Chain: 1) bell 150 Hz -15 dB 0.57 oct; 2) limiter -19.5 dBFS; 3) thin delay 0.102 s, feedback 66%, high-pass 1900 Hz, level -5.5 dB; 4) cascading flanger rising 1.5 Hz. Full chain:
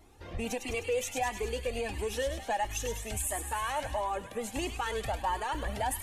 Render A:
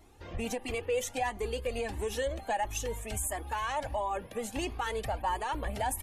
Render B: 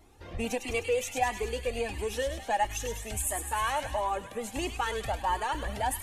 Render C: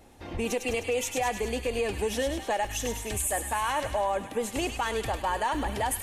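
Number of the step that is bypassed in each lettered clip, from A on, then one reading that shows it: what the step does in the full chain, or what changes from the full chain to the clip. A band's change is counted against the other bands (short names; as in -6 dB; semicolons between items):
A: 3, 4 kHz band -1.5 dB; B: 2, crest factor change +4.0 dB; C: 4, loudness change +4.0 LU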